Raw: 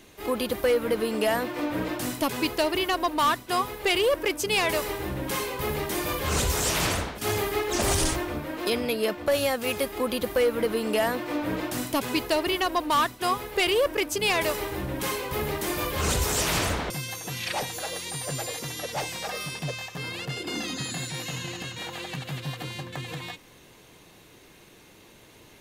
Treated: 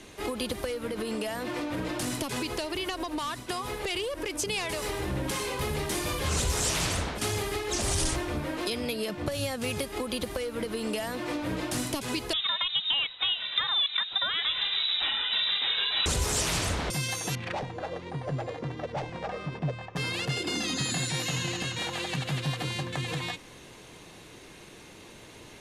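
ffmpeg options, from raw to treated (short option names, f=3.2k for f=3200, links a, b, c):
-filter_complex "[0:a]asettb=1/sr,asplit=3[a][b][c];[a]atrim=end=0.874[d];[b]atrim=start=0.87:end=5.61,asetpts=PTS-STARTPTS,afade=t=in:d=0.004:c=qsin,afade=t=out:st=4.736:d=0.004:c=qsin,acompressor=threshold=-28dB:ratio=6:attack=3.2:release=140:knee=1:detection=peak[e];[c]atrim=start=5.606[f];[d][e]acrossfade=d=0.004:c1=hsin:c2=qsin[g];[g][f]acrossfade=d=0.004:c1=qsin:c2=hsin,asettb=1/sr,asplit=3[h][i][j];[h]atrim=end=9.094[k];[i]atrim=start=9.09:end=9.84,asetpts=PTS-STARTPTS,afade=t=in:d=0.004:c=qsin,afade=t=out:st=0.746:d=0.004:c=qsin,equalizer=f=130:w=1.1:g=10[l];[j]atrim=start=9.836[m];[k][l]acrossfade=d=0.004:c1=hsin:c2=qsin[n];[n][m]acrossfade=d=0.004:c1=qsin:c2=hsin,asettb=1/sr,asplit=3[o][p][q];[o]atrim=end=12.334[r];[p]atrim=start=12.33:end=16.06,asetpts=PTS-STARTPTS,afade=t=in:d=0.004:c=qsin,afade=t=out:st=3.726:d=0.004:c=qsin,lowpass=f=3.4k:t=q:w=0.5098,lowpass=f=3.4k:t=q:w=0.6013,lowpass=f=3.4k:t=q:w=0.9,lowpass=f=3.4k:t=q:w=2.563,afreqshift=-4000[s];[q]atrim=start=16.056[t];[r][s]acrossfade=d=0.004:c1=hsin:c2=qsin[u];[u][t]acrossfade=d=0.004:c1=qsin:c2=hsin,asettb=1/sr,asplit=3[v][w][x];[v]atrim=end=17.354[y];[w]atrim=start=17.35:end=19.96,asetpts=PTS-STARTPTS,afade=t=in:d=0.004:c=qsin,afade=t=out:st=2.606:d=0.004:c=qsin,adynamicsmooth=sensitivity=1:basefreq=1k[z];[x]atrim=start=19.956[aa];[y][z]acrossfade=d=0.004:c1=hsin:c2=qsin[ab];[ab][aa]acrossfade=d=0.004:c1=qsin:c2=hsin,acompressor=threshold=-27dB:ratio=6,lowpass=f=11k:w=0.5412,lowpass=f=11k:w=1.3066,acrossover=split=180|3000[ac][ad][ae];[ad]acompressor=threshold=-35dB:ratio=6[af];[ac][af][ae]amix=inputs=3:normalize=0,volume=4dB"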